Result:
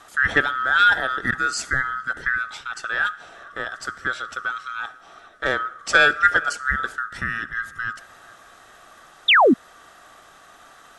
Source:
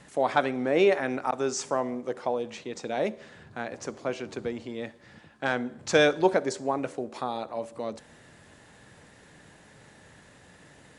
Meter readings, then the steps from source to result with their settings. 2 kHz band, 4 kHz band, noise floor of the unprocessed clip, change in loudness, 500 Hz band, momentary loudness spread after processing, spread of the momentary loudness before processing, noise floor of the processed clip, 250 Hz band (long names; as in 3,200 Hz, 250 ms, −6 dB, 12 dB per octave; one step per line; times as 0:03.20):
+15.5 dB, +11.5 dB, −55 dBFS, +7.5 dB, −2.0 dB, 15 LU, 15 LU, −50 dBFS, +1.5 dB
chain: neighbouring bands swapped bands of 1,000 Hz
delay with a low-pass on its return 436 ms, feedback 37%, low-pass 2,300 Hz, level −23 dB
sound drawn into the spectrogram fall, 0:09.28–0:09.54, 210–3,900 Hz −18 dBFS
level +5 dB